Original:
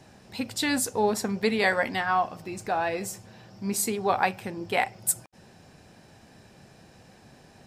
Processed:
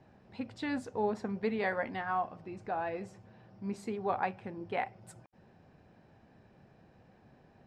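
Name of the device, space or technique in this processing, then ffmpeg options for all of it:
through cloth: -af "lowpass=8800,highshelf=frequency=3600:gain=-14,highshelf=frequency=5700:gain=-12,volume=-7dB"

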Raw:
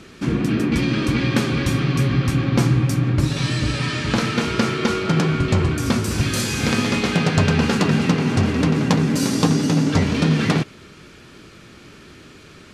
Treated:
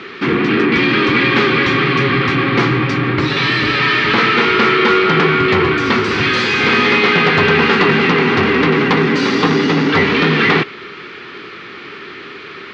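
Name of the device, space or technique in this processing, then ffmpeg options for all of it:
overdrive pedal into a guitar cabinet: -filter_complex "[0:a]asplit=2[link_01][link_02];[link_02]highpass=frequency=720:poles=1,volume=22dB,asoftclip=type=tanh:threshold=-2dB[link_03];[link_01][link_03]amix=inputs=2:normalize=0,lowpass=frequency=6100:poles=1,volume=-6dB,highpass=81,equalizer=frequency=400:width_type=q:width=4:gain=8,equalizer=frequency=610:width_type=q:width=4:gain=-8,equalizer=frequency=1200:width_type=q:width=4:gain=4,equalizer=frequency=2000:width_type=q:width=4:gain=6,lowpass=frequency=4100:width=0.5412,lowpass=frequency=4100:width=1.3066,volume=-2dB"

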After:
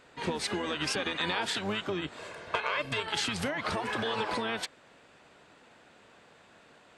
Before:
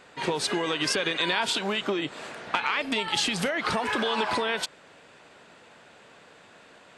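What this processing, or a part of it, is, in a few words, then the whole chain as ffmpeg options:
octave pedal: -filter_complex "[0:a]asplit=2[link_01][link_02];[link_02]asetrate=22050,aresample=44100,atempo=2,volume=-6dB[link_03];[link_01][link_03]amix=inputs=2:normalize=0,asettb=1/sr,asplit=3[link_04][link_05][link_06];[link_04]atrim=end=2.184[link_07];[link_05]atrim=start=2.18:end=3,asetpts=PTS-STARTPTS,afade=type=in:duration=0.004:curve=qsin,afade=type=out:start_time=0.816:duration=0.004:curve=qsin,aecho=1:1:1.9:0.52,atrim=end_sample=36162[link_08];[link_06]atrim=start=2.996[link_09];[link_07][link_08]acrossfade=duration=0.004:curve1=hsin:curve2=qsin[link_10];[link_10][link_09]acrossfade=duration=0.004:curve1=qsin:curve2=hsin,volume=-6dB"

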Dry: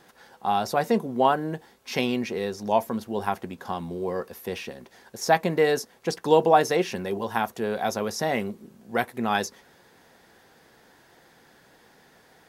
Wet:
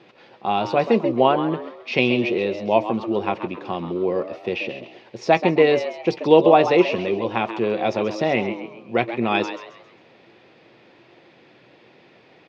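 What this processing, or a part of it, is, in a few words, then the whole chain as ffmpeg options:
frequency-shifting delay pedal into a guitar cabinet: -filter_complex "[0:a]asplit=5[link_01][link_02][link_03][link_04][link_05];[link_02]adelay=134,afreqshift=110,volume=-10.5dB[link_06];[link_03]adelay=268,afreqshift=220,volume=-18.9dB[link_07];[link_04]adelay=402,afreqshift=330,volume=-27.3dB[link_08];[link_05]adelay=536,afreqshift=440,volume=-35.7dB[link_09];[link_01][link_06][link_07][link_08][link_09]amix=inputs=5:normalize=0,highpass=110,equalizer=frequency=120:width_type=q:width=4:gain=8,equalizer=frequency=340:width_type=q:width=4:gain=8,equalizer=frequency=570:width_type=q:width=4:gain=4,equalizer=frequency=860:width_type=q:width=4:gain=-3,equalizer=frequency=1600:width_type=q:width=4:gain=-8,equalizer=frequency=2500:width_type=q:width=4:gain=10,lowpass=frequency=4300:width=0.5412,lowpass=frequency=4300:width=1.3066,volume=3dB"

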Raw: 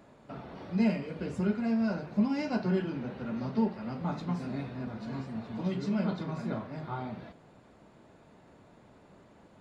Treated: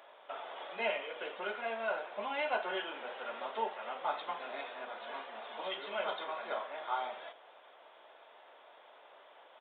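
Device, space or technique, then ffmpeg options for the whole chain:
musical greeting card: -af "aresample=8000,aresample=44100,highpass=frequency=570:width=0.5412,highpass=frequency=570:width=1.3066,equalizer=frequency=3300:width_type=o:width=0.28:gain=9,volume=4.5dB"

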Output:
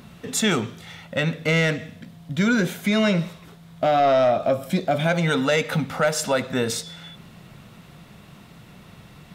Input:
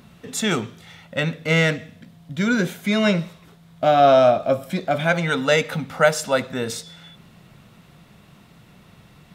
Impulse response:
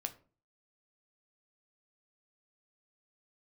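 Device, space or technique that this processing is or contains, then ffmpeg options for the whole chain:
soft clipper into limiter: -filter_complex "[0:a]asettb=1/sr,asplit=3[link_01][link_02][link_03];[link_01]atrim=end=4.684[link_04];[link_02]atrim=start=4.68:end=5.35,asetpts=PTS-STARTPTS,afade=type=in:duration=0.004:curve=qsin,afade=type=out:start_time=0.666:duration=0.004:curve=qsin,equalizer=frequency=1500:width=0.81:gain=-4.5[link_05];[link_03]atrim=start=5.346[link_06];[link_04][link_05]acrossfade=duration=0.004:curve1=hsin:curve2=qsin[link_07];[link_07][link_06]acrossfade=duration=0.004:curve1=qsin:curve2=hsin,asoftclip=type=tanh:threshold=-8dB,alimiter=limit=-15.5dB:level=0:latency=1:release=176,volume=3.5dB"

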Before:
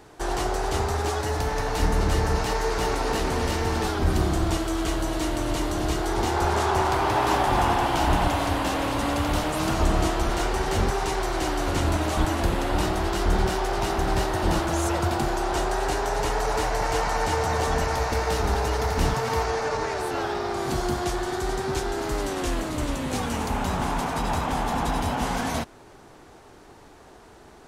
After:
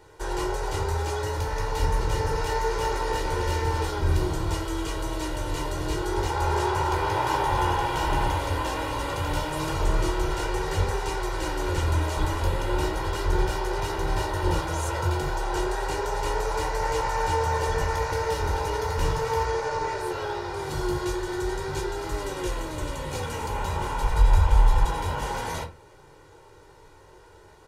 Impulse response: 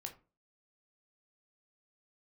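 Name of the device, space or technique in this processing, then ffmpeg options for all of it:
microphone above a desk: -filter_complex "[0:a]aecho=1:1:2.1:0.68[link_01];[1:a]atrim=start_sample=2205[link_02];[link_01][link_02]afir=irnorm=-1:irlink=0,asplit=3[link_03][link_04][link_05];[link_03]afade=type=out:start_time=24.02:duration=0.02[link_06];[link_04]asubboost=boost=11.5:cutoff=60,afade=type=in:start_time=24.02:duration=0.02,afade=type=out:start_time=24.85:duration=0.02[link_07];[link_05]afade=type=in:start_time=24.85:duration=0.02[link_08];[link_06][link_07][link_08]amix=inputs=3:normalize=0,volume=-1dB"

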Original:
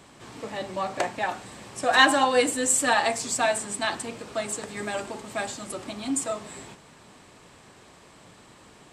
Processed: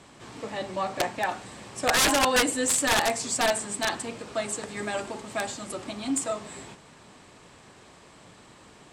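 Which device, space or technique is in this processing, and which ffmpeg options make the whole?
overflowing digital effects unit: -af "aeval=exprs='(mod(5.31*val(0)+1,2)-1)/5.31':channel_layout=same,lowpass=11000"

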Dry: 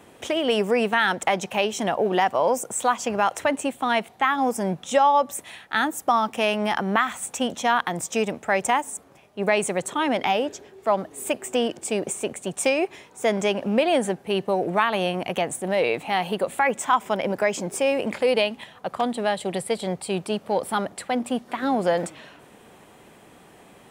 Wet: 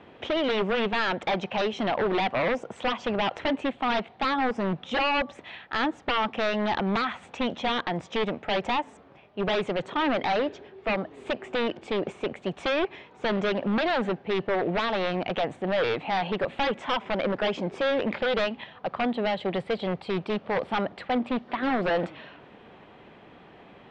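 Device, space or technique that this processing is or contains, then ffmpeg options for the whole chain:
synthesiser wavefolder: -af "aeval=exprs='0.106*(abs(mod(val(0)/0.106+3,4)-2)-1)':channel_layout=same,lowpass=frequency=3700:width=0.5412,lowpass=frequency=3700:width=1.3066"

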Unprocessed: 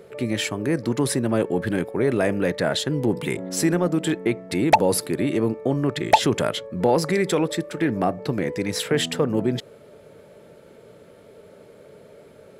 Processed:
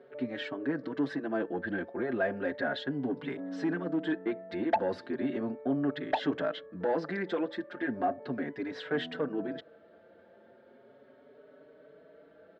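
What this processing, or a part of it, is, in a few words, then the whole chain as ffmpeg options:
barber-pole flanger into a guitar amplifier: -filter_complex "[0:a]asplit=2[link_01][link_02];[link_02]adelay=5,afreqshift=0.36[link_03];[link_01][link_03]amix=inputs=2:normalize=1,asoftclip=type=tanh:threshold=-14.5dB,highpass=92,equalizer=frequency=110:width_type=q:width=4:gain=-10,equalizer=frequency=170:width_type=q:width=4:gain=-6,equalizer=frequency=270:width_type=q:width=4:gain=8,equalizer=frequency=680:width_type=q:width=4:gain=7,equalizer=frequency=1600:width_type=q:width=4:gain=10,equalizer=frequency=2400:width_type=q:width=4:gain=-6,lowpass=frequency=3700:width=0.5412,lowpass=frequency=3700:width=1.3066,volume=-8.5dB"

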